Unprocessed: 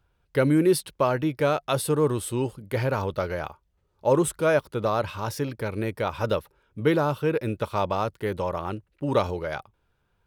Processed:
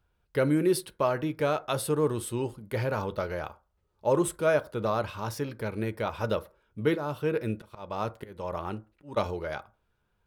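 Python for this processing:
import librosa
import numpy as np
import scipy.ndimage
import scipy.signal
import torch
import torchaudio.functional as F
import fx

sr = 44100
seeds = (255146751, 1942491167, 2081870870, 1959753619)

y = fx.auto_swell(x, sr, attack_ms=306.0, at=(6.94, 9.16), fade=0.02)
y = fx.rev_fdn(y, sr, rt60_s=0.34, lf_ratio=0.8, hf_ratio=0.45, size_ms=28.0, drr_db=11.5)
y = F.gain(torch.from_numpy(y), -4.0).numpy()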